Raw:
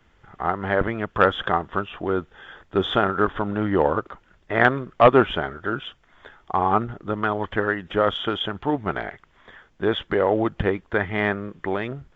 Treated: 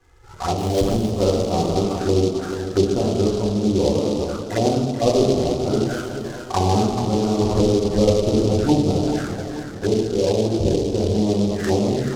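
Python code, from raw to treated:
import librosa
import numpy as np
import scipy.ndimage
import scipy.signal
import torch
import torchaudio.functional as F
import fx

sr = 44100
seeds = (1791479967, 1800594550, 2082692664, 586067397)

y = scipy.signal.medfilt(x, 9)
y = fx.rev_gated(y, sr, seeds[0], gate_ms=460, shape='falling', drr_db=-6.0)
y = fx.env_flanger(y, sr, rest_ms=2.5, full_db=-17.0)
y = fx.env_lowpass_down(y, sr, base_hz=570.0, full_db=-17.5)
y = fx.sample_hold(y, sr, seeds[1], rate_hz=3700.0, jitter_pct=0, at=(0.58, 1.12))
y = fx.high_shelf(y, sr, hz=3600.0, db=-11.5)
y = fx.rider(y, sr, range_db=4, speed_s=0.5)
y = fx.tilt_eq(y, sr, slope=-1.5, at=(7.39, 8.81))
y = fx.echo_feedback(y, sr, ms=436, feedback_pct=51, wet_db=-10)
y = fx.noise_mod_delay(y, sr, seeds[2], noise_hz=4300.0, depth_ms=0.05)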